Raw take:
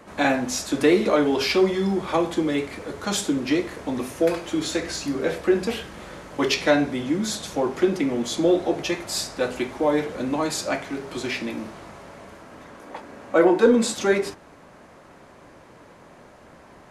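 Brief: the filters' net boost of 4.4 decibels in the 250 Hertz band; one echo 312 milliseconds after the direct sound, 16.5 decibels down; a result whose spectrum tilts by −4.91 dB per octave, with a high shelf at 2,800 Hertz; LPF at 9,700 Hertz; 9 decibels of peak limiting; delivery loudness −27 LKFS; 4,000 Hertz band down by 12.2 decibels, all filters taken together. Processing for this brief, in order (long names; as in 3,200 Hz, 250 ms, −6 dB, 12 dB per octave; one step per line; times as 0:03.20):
low-pass filter 9,700 Hz
parametric band 250 Hz +6 dB
high-shelf EQ 2,800 Hz −8.5 dB
parametric band 4,000 Hz −8.5 dB
brickwall limiter −13 dBFS
single-tap delay 312 ms −16.5 dB
level −3.5 dB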